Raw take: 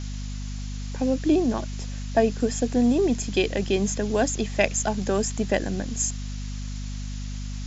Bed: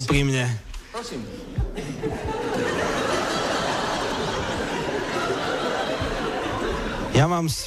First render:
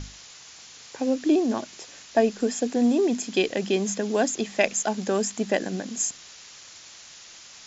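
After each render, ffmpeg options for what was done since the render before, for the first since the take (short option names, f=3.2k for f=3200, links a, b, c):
-af "bandreject=f=50:t=h:w=6,bandreject=f=100:t=h:w=6,bandreject=f=150:t=h:w=6,bandreject=f=200:t=h:w=6,bandreject=f=250:t=h:w=6"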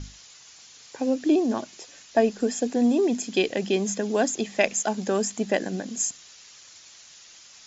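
-af "afftdn=nr=6:nf=-47"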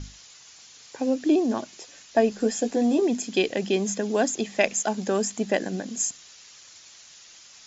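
-filter_complex "[0:a]asettb=1/sr,asplit=3[a][b][c];[a]atrim=end=2.304[d];[b]atrim=start=2.3:end=3.02,asetpts=PTS-STARTPTS,afade=t=in:d=0.004:c=qsin,afade=t=out:st=0.716:d=0.004:c=qsin,asplit=2[e][f];[f]adelay=14,volume=-6.5dB[g];[e][g]amix=inputs=2:normalize=0,atrim=end_sample=31752[h];[c]atrim=start=3.016[i];[d][h]acrossfade=d=0.004:c1=hsin:c2=qsin[j];[j][i]acrossfade=d=0.004:c1=qsin:c2=hsin"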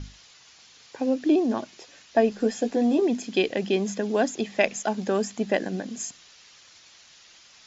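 -af "lowpass=4.8k"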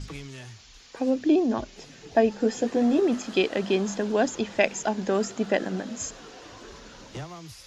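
-filter_complex "[1:a]volume=-19.5dB[a];[0:a][a]amix=inputs=2:normalize=0"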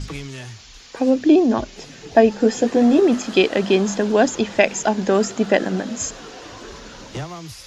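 -af "volume=7.5dB,alimiter=limit=-1dB:level=0:latency=1"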